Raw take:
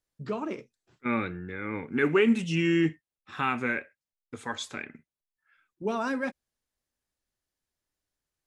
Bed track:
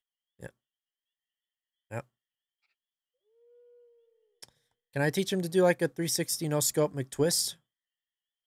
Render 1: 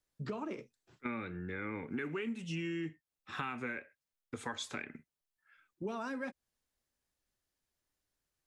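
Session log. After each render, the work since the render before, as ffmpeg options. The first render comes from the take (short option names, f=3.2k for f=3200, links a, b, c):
-filter_complex "[0:a]acrossover=split=360|930|1500[a][b][c][d];[b]alimiter=level_in=5dB:limit=-24dB:level=0:latency=1,volume=-5dB[e];[a][e][c][d]amix=inputs=4:normalize=0,acompressor=threshold=-36dB:ratio=8"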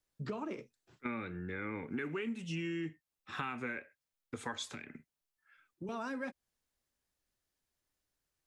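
-filter_complex "[0:a]asettb=1/sr,asplit=3[a][b][c];[a]atrim=end=4.664[d];[b]atrim=start=4.66:end=5.89,asetpts=PTS-STARTPTS,afade=t=in:d=0.004:c=qsin,afade=t=out:st=1.226:d=0.004:c=qsin,acrossover=split=250|3000[e][f][g];[f]acompressor=threshold=-46dB:ratio=6:attack=3.2:release=140:knee=2.83:detection=peak[h];[e][h][g]amix=inputs=3:normalize=0[i];[c]atrim=start=5.886[j];[d][i]acrossfade=d=0.004:c1=hsin:c2=qsin[k];[k][j]acrossfade=d=0.004:c1=qsin:c2=hsin"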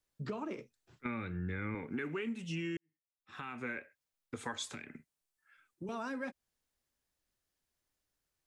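-filter_complex "[0:a]asettb=1/sr,asplit=3[a][b][c];[a]atrim=end=0.594[d];[b]atrim=start=0.59:end=1.75,asetpts=PTS-STARTPTS,afade=t=in:d=0.004:c=qsin,afade=t=out:st=1.156:d=0.004:c=qsin,asubboost=boost=8:cutoff=190[e];[c]atrim=start=1.746[f];[d][e]acrossfade=d=0.004:c1=hsin:c2=qsin[g];[g][f]acrossfade=d=0.004:c1=qsin:c2=hsin,asettb=1/sr,asplit=3[h][i][j];[h]atrim=end=4.444[k];[i]atrim=start=4.44:end=6.01,asetpts=PTS-STARTPTS,afade=t=in:d=0.004:c=qsin,afade=t=out:st=1.566:d=0.004:c=qsin,equalizer=f=8.6k:t=o:w=0.68:g=4.5[l];[j]atrim=start=6.006[m];[k][l]acrossfade=d=0.004:c1=hsin:c2=qsin[n];[n][m]acrossfade=d=0.004:c1=qsin:c2=hsin,asplit=2[o][p];[o]atrim=end=2.77,asetpts=PTS-STARTPTS,afade=t=out:st=2.766:d=0.004:c=hsin[q];[p]atrim=start=2.77,asetpts=PTS-STARTPTS,afade=t=in:d=0.92:c=qua[r];[q][r]concat=n=2:v=0:a=1"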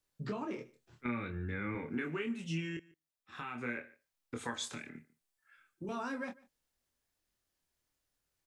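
-filter_complex "[0:a]asplit=2[a][b];[b]adelay=25,volume=-5dB[c];[a][c]amix=inputs=2:normalize=0,aecho=1:1:147:0.0708"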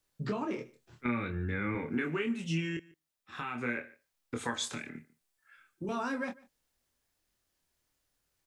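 -af "volume=4.5dB"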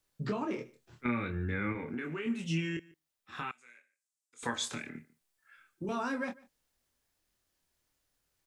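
-filter_complex "[0:a]asettb=1/sr,asplit=3[a][b][c];[a]atrim=end=1.724[d];[b]atrim=start=1.72:end=2.26,asetpts=PTS-STARTPTS,afade=t=in:d=0.004:c=qsin,afade=t=out:st=0.536:d=0.004:c=qsin,acompressor=threshold=-36dB:ratio=2.5:attack=3.2:release=140:knee=1:detection=peak[e];[c]atrim=start=2.256[f];[d][e]acrossfade=d=0.004:c1=hsin:c2=qsin[g];[g][f]acrossfade=d=0.004:c1=qsin:c2=hsin,asettb=1/sr,asplit=3[h][i][j];[h]atrim=end=3.514[k];[i]atrim=start=3.51:end=4.43,asetpts=PTS-STARTPTS,afade=t=in:d=0.004:c=qsin,afade=t=out:st=0.916:d=0.004:c=qsin,bandpass=f=7.7k:t=q:w=2.5[l];[j]atrim=start=4.426[m];[k][l]acrossfade=d=0.004:c1=hsin:c2=qsin[n];[n][m]acrossfade=d=0.004:c1=qsin:c2=hsin"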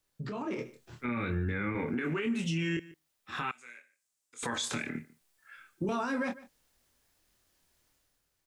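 -af "alimiter=level_in=8dB:limit=-24dB:level=0:latency=1:release=58,volume=-8dB,dynaudnorm=f=110:g=9:m=7.5dB"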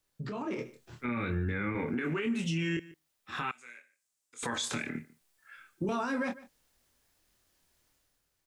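-af anull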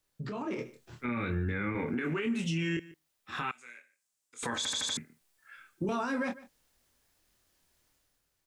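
-filter_complex "[0:a]asplit=6[a][b][c][d][e][f];[a]atrim=end=4.652[g];[b]atrim=start=4.568:end=4.652[h];[c]atrim=start=4.568:end=4.652[i];[d]atrim=start=4.568:end=4.652[j];[e]atrim=start=4.568:end=4.652[k];[f]atrim=start=4.968[l];[g][h]acrossfade=d=0.004:c1=hsin:c2=hsin[m];[m][i]acrossfade=d=0.004:c1=hsin:c2=hsin[n];[n][j]acrossfade=d=0.004:c1=hsin:c2=hsin[o];[o][k]acrossfade=d=0.004:c1=hsin:c2=hsin[p];[p][l]acrossfade=d=0.004:c1=hsin:c2=hsin"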